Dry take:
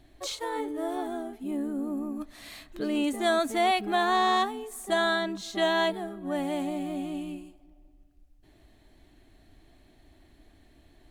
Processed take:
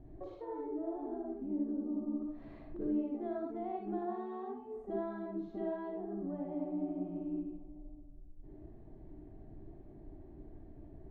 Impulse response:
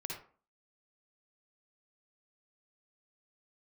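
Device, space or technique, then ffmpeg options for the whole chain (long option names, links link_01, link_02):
television next door: -filter_complex "[0:a]asettb=1/sr,asplit=3[link_01][link_02][link_03];[link_01]atrim=end=4.014[link_04];[link_02]atrim=start=4.01:end=4.78,asetpts=PTS-STARTPTS,afade=type=in:duration=0.004:curve=qsin,afade=type=out:start_time=0.766:duration=0.004:curve=qsin,highpass=56[link_05];[link_03]atrim=start=4.776[link_06];[link_04][link_05]acrossfade=duration=0.004:curve1=hsin:curve2=qsin[link_07];[link_07][link_06]acrossfade=duration=0.004:curve1=qsin:curve2=hsin,acompressor=threshold=-46dB:ratio=3,lowpass=560[link_08];[1:a]atrim=start_sample=2205[link_09];[link_08][link_09]afir=irnorm=-1:irlink=0,volume=7.5dB"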